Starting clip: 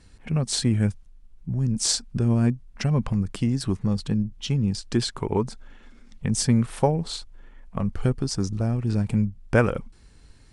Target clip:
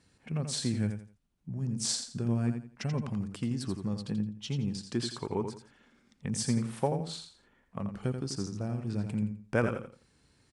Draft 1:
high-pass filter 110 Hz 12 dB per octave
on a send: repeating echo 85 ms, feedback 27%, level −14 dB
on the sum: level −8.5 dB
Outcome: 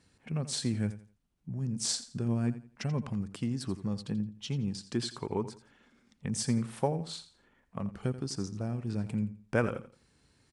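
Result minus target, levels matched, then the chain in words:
echo-to-direct −6.5 dB
high-pass filter 110 Hz 12 dB per octave
on a send: repeating echo 85 ms, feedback 27%, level −7.5 dB
on the sum: level −8.5 dB

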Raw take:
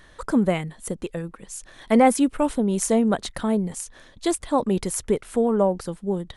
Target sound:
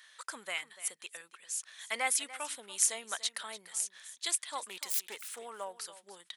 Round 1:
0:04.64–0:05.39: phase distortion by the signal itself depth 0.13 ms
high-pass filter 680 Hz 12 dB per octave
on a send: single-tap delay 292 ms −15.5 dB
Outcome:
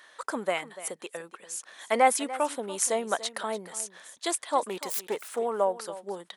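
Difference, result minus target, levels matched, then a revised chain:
500 Hz band +13.0 dB
0:04.64–0:05.39: phase distortion by the signal itself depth 0.13 ms
high-pass filter 2,100 Hz 12 dB per octave
on a send: single-tap delay 292 ms −15.5 dB

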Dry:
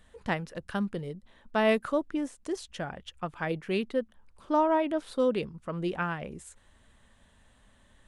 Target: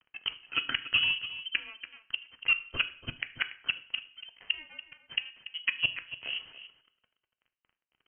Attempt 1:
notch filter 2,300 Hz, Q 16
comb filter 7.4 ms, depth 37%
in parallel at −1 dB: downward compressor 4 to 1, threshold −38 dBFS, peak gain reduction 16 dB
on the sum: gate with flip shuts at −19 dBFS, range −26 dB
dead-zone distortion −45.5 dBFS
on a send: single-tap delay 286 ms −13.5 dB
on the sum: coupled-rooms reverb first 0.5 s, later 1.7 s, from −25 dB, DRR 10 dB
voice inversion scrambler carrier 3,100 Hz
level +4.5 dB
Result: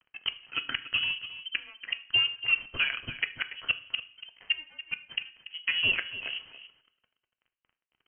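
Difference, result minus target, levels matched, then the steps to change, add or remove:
downward compressor: peak gain reduction +8 dB
change: downward compressor 4 to 1, threshold −27.5 dBFS, peak gain reduction 8 dB

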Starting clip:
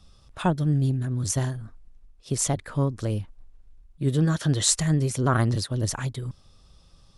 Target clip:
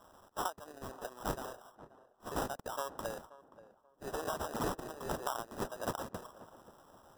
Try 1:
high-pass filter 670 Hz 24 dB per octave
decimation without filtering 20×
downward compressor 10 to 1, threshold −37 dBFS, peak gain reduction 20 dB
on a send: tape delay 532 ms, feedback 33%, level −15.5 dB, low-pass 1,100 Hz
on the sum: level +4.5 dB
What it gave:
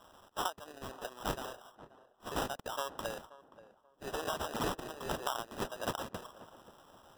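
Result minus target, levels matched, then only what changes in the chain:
4,000 Hz band +5.5 dB
add after downward compressor: parametric band 2,900 Hz −9 dB 1.1 octaves

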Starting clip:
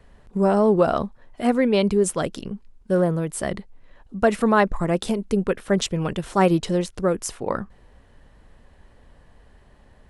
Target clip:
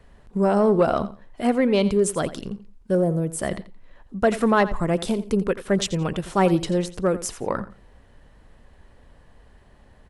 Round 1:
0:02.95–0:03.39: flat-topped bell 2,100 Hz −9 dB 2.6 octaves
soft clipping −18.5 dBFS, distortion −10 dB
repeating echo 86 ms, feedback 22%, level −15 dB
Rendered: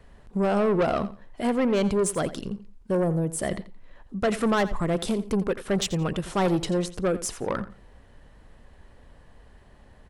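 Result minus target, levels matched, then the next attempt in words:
soft clipping: distortion +14 dB
0:02.95–0:03.39: flat-topped bell 2,100 Hz −9 dB 2.6 octaves
soft clipping −7 dBFS, distortion −24 dB
repeating echo 86 ms, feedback 22%, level −15 dB

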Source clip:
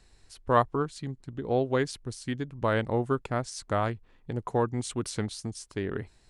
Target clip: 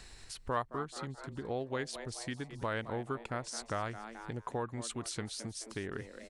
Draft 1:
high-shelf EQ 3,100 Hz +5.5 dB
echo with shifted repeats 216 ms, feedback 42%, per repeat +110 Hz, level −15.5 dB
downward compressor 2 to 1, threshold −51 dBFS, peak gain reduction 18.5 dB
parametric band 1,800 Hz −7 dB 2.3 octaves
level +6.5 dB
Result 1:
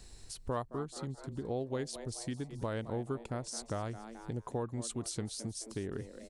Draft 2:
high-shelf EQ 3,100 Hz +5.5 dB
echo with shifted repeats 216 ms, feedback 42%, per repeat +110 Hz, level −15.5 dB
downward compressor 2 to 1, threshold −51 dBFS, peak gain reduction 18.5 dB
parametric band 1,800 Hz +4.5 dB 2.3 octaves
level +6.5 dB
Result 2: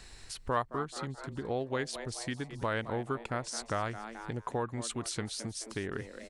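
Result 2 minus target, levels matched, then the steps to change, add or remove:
downward compressor: peak gain reduction −3 dB
change: downward compressor 2 to 1, threshold −57 dBFS, peak gain reduction 21.5 dB

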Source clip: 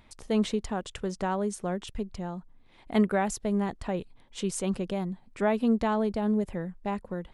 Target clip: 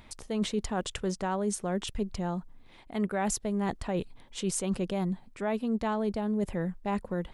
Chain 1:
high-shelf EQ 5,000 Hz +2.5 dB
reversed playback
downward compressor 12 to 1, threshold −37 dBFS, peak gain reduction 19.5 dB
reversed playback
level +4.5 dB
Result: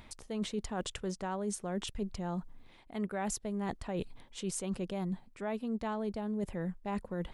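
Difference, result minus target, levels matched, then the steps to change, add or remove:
downward compressor: peak gain reduction +6 dB
change: downward compressor 12 to 1, threshold −30.5 dBFS, peak gain reduction 13.5 dB

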